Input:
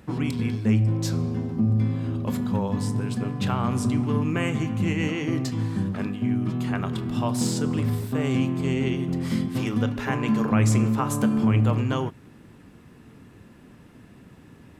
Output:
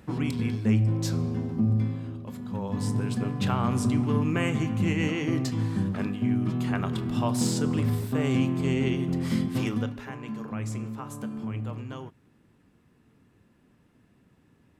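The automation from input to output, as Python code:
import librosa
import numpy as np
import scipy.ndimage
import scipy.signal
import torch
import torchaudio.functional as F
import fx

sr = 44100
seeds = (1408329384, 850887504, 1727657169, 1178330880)

y = fx.gain(x, sr, db=fx.line((1.74, -2.0), (2.33, -12.5), (2.89, -1.0), (9.66, -1.0), (10.12, -13.0)))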